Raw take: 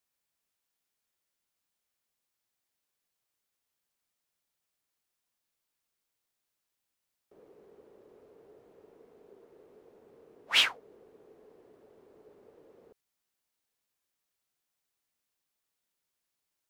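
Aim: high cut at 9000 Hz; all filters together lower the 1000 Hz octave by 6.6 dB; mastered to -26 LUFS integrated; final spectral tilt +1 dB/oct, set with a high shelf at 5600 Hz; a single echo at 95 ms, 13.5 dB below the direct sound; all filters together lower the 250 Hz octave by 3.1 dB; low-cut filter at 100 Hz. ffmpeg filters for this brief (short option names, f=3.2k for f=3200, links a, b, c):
-af "highpass=100,lowpass=9k,equalizer=f=250:t=o:g=-3.5,equalizer=f=1k:t=o:g=-8.5,highshelf=f=5.6k:g=-7,aecho=1:1:95:0.211,volume=3dB"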